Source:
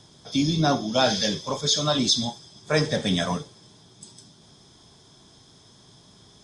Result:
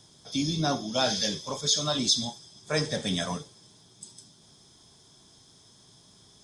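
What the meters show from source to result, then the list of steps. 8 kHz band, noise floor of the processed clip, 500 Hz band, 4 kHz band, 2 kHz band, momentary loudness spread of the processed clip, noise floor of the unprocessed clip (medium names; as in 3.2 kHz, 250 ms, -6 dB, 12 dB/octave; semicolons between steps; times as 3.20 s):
-0.5 dB, -58 dBFS, -6.0 dB, -3.0 dB, -5.5 dB, 17 LU, -54 dBFS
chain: treble shelf 6.5 kHz +11 dB; trim -6 dB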